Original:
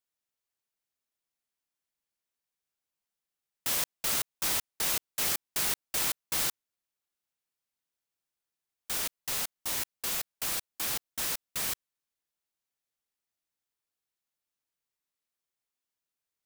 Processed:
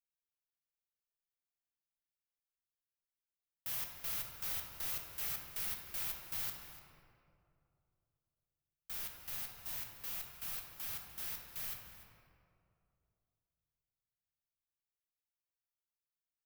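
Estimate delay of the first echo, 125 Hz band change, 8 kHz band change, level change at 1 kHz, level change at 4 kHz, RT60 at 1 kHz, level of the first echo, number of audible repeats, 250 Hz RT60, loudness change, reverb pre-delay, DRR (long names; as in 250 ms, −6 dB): 296 ms, −6.5 dB, −15.0 dB, −12.5 dB, −13.5 dB, 2.3 s, −16.5 dB, 1, 2.9 s, −9.5 dB, 8 ms, 1.5 dB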